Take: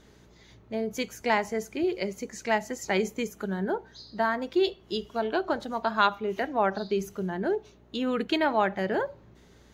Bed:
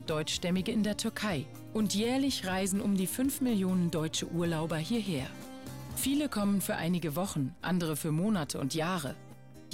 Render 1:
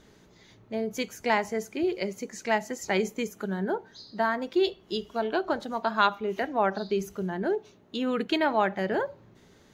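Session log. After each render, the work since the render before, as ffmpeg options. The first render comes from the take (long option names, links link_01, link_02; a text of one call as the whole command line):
ffmpeg -i in.wav -af "bandreject=frequency=60:width_type=h:width=4,bandreject=frequency=120:width_type=h:width=4" out.wav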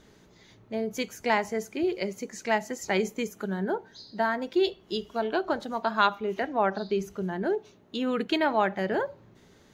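ffmpeg -i in.wav -filter_complex "[0:a]asettb=1/sr,asplit=3[link_01][link_02][link_03];[link_01]atrim=end=3.884[link_04];[link_02]atrim=start=3.88:end=4.71,asetpts=PTS-STARTPTS,afade=type=in:duration=0.004:curve=qsin,afade=type=out:start_time=0.826:duration=0.004:curve=qsin,asuperstop=centerf=1200:order=4:qfactor=7.4[link_05];[link_03]atrim=start=4.706[link_06];[link_04][link_05]acrossfade=duration=0.004:curve1=hsin:curve2=qsin[link_07];[link_07][link_06]acrossfade=duration=0.004:curve1=qsin:curve2=hsin,asettb=1/sr,asplit=3[link_08][link_09][link_10];[link_08]atrim=end=6.344[link_11];[link_09]atrim=start=6.34:end=7.23,asetpts=PTS-STARTPTS,afade=type=in:duration=0.004:curve=qsin,afade=type=out:start_time=0.886:duration=0.004:curve=qsin,highshelf=frequency=8700:gain=-8.5[link_12];[link_10]atrim=start=7.226[link_13];[link_11][link_12]acrossfade=duration=0.004:curve1=hsin:curve2=qsin[link_14];[link_14][link_13]acrossfade=duration=0.004:curve1=qsin:curve2=hsin" out.wav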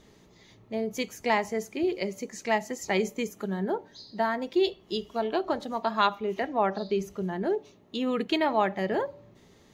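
ffmpeg -i in.wav -af "bandreject=frequency=1500:width=6.6,bandreject=frequency=289.8:width_type=h:width=4,bandreject=frequency=579.6:width_type=h:width=4" out.wav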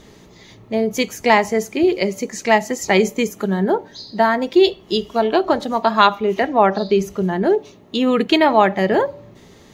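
ffmpeg -i in.wav -af "volume=11.5dB,alimiter=limit=-1dB:level=0:latency=1" out.wav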